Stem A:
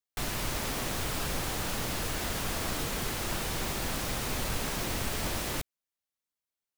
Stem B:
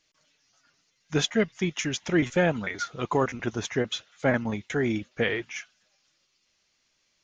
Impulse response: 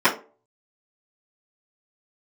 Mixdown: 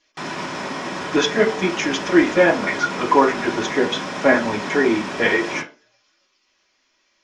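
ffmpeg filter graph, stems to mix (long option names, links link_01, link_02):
-filter_complex "[0:a]highpass=frequency=90:width=0.5412,highpass=frequency=90:width=1.3066,alimiter=level_in=1.5dB:limit=-24dB:level=0:latency=1:release=26,volume=-1.5dB,volume=-2dB,asplit=2[link_01][link_02];[link_02]volume=-10dB[link_03];[1:a]equalizer=frequency=160:width_type=o:width=0.56:gain=-13,volume=2dB,asplit=2[link_04][link_05];[link_05]volume=-14.5dB[link_06];[2:a]atrim=start_sample=2205[link_07];[link_03][link_06]amix=inputs=2:normalize=0[link_08];[link_08][link_07]afir=irnorm=-1:irlink=0[link_09];[link_01][link_04][link_09]amix=inputs=3:normalize=0,lowpass=frequency=7000:width=0.5412,lowpass=frequency=7000:width=1.3066"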